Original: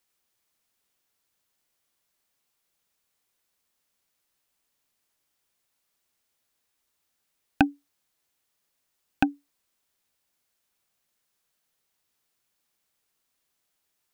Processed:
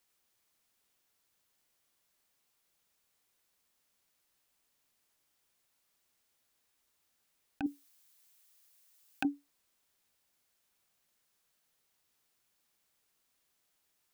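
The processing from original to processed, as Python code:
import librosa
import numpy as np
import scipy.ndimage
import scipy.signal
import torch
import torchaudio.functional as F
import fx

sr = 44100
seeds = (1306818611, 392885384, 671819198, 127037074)

y = fx.tilt_eq(x, sr, slope=3.0, at=(7.66, 9.25))
y = fx.over_compress(y, sr, threshold_db=-27.0, ratio=-1.0)
y = y * librosa.db_to_amplitude(-5.0)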